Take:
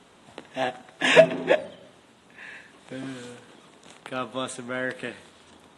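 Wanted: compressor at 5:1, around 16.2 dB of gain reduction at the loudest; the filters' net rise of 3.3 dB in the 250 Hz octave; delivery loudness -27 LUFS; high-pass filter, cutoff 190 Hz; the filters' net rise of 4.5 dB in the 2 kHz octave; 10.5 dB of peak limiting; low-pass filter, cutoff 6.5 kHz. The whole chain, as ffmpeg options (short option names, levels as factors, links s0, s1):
-af "highpass=190,lowpass=6500,equalizer=f=250:t=o:g=5,equalizer=f=2000:t=o:g=5.5,acompressor=threshold=0.0501:ratio=5,volume=3.35,alimiter=limit=0.188:level=0:latency=1"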